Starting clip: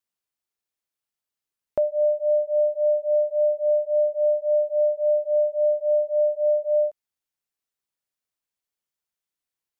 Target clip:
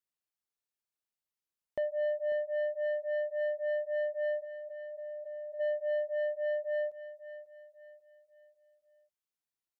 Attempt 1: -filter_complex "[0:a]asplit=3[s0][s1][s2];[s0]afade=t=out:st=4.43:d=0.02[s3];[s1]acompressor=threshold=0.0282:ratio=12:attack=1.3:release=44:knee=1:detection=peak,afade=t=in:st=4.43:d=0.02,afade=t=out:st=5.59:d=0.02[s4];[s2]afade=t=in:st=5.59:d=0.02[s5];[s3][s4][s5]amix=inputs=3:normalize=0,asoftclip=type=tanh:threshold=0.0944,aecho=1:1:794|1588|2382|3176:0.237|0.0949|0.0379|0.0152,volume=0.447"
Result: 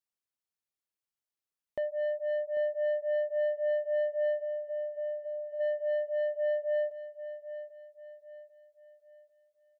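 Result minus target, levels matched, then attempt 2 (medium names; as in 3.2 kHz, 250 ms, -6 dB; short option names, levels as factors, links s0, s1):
echo 249 ms late
-filter_complex "[0:a]asplit=3[s0][s1][s2];[s0]afade=t=out:st=4.43:d=0.02[s3];[s1]acompressor=threshold=0.0282:ratio=12:attack=1.3:release=44:knee=1:detection=peak,afade=t=in:st=4.43:d=0.02,afade=t=out:st=5.59:d=0.02[s4];[s2]afade=t=in:st=5.59:d=0.02[s5];[s3][s4][s5]amix=inputs=3:normalize=0,asoftclip=type=tanh:threshold=0.0944,aecho=1:1:545|1090|1635|2180:0.237|0.0949|0.0379|0.0152,volume=0.447"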